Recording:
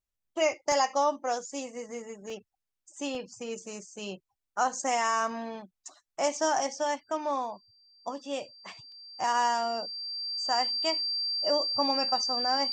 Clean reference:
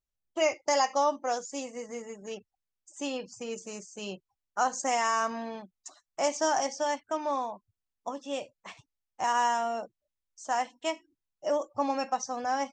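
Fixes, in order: notch 4700 Hz, Q 30; interpolate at 0.72/2.3/3.15/8.92, 1.5 ms

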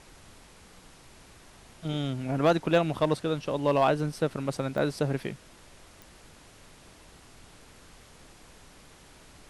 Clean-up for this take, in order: clip repair -14.5 dBFS; de-click; noise print and reduce 20 dB

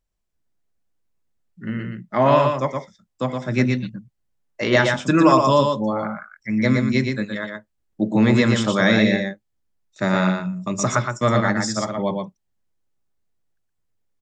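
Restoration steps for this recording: interpolate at 7.93, 3 ms; inverse comb 0.119 s -4.5 dB

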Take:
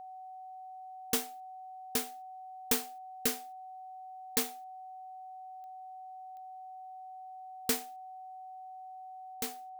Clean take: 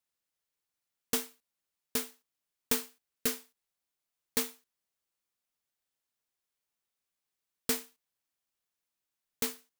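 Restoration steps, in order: de-click; notch 750 Hz, Q 30; gain correction +4.5 dB, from 9.34

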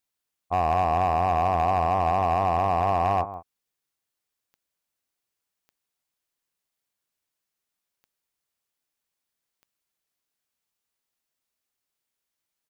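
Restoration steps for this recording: clip repair -16 dBFS; de-click; inverse comb 0.167 s -14 dB

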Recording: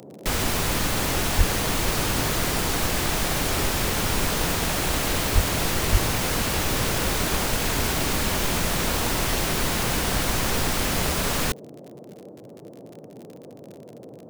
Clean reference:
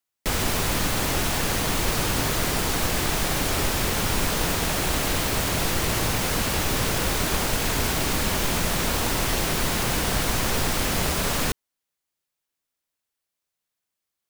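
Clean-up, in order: de-click; 1.37–1.49 HPF 140 Hz 24 dB/oct; 5.34–5.46 HPF 140 Hz 24 dB/oct; 5.91–6.03 HPF 140 Hz 24 dB/oct; noise print and reduce 30 dB

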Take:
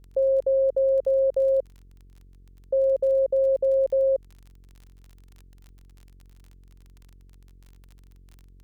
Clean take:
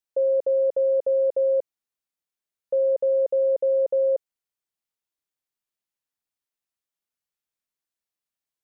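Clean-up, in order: de-click; de-hum 45.4 Hz, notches 10

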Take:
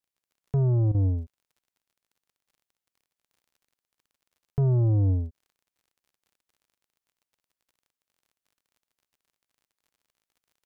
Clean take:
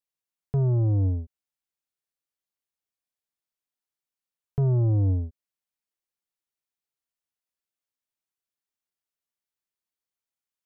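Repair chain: de-click; interpolate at 0.92, 25 ms

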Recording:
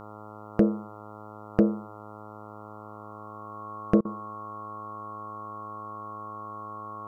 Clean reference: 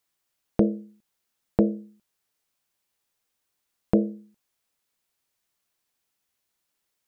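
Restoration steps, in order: clip repair -8.5 dBFS; de-hum 106 Hz, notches 13; notch 1100 Hz, Q 30; interpolate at 4.01, 39 ms

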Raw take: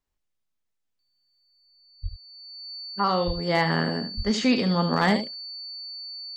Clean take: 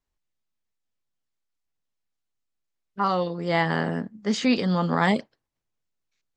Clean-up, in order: clip repair -10.5 dBFS; notch 4500 Hz, Q 30; de-plosive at 2.02/3.26/4.16; inverse comb 74 ms -10 dB

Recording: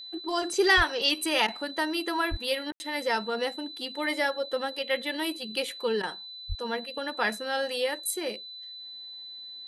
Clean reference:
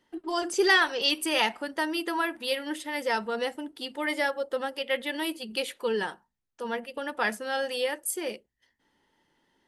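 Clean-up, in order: notch 4000 Hz, Q 30; de-plosive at 0.76/2.3/6.48; room tone fill 2.72–2.8; interpolate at 1.47/2.71/6.02, 11 ms

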